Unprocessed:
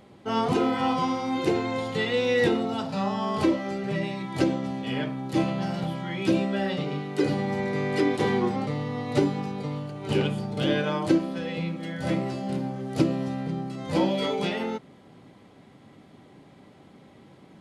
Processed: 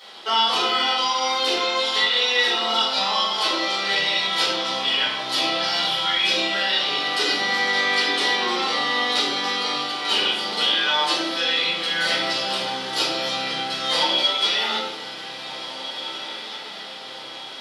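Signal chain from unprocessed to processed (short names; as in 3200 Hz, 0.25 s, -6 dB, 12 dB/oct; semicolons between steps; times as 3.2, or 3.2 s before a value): HPF 990 Hz 12 dB/oct; band shelf 4100 Hz +10 dB 1.1 oct; compressor 4:1, threshold -36 dBFS, peak gain reduction 11.5 dB; on a send: diffused feedback echo 1.816 s, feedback 55%, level -11.5 dB; on the sum: shoebox room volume 160 m³, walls mixed, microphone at 4.1 m; gain +4.5 dB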